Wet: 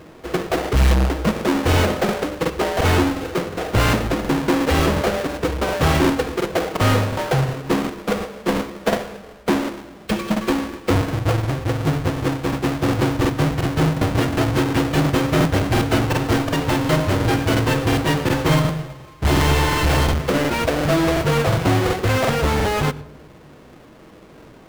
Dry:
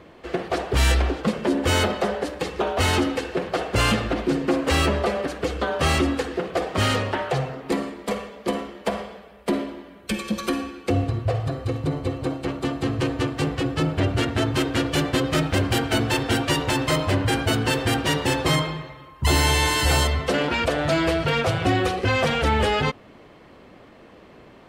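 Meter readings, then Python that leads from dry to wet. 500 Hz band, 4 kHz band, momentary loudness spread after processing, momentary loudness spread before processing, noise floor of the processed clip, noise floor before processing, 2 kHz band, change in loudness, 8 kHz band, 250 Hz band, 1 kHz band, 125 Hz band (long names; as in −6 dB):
+3.5 dB, −0.5 dB, 6 LU, 8 LU, −44 dBFS, −48 dBFS, +1.5 dB, +3.5 dB, +0.5 dB, +4.5 dB, +3.0 dB, +5.0 dB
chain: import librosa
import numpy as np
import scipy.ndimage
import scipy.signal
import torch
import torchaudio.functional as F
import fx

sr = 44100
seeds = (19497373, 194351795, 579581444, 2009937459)

p1 = fx.halfwave_hold(x, sr)
p2 = fx.high_shelf(p1, sr, hz=4500.0, db=-7.5)
p3 = fx.rider(p2, sr, range_db=3, speed_s=2.0)
p4 = p2 + F.gain(torch.from_numpy(p3), -1.5).numpy()
p5 = fx.room_shoebox(p4, sr, seeds[0], volume_m3=3100.0, walls='furnished', distance_m=0.57)
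p6 = fx.buffer_crackle(p5, sr, first_s=0.6, period_s=0.36, block=2048, kind='repeat')
y = F.gain(torch.from_numpy(p6), -6.0).numpy()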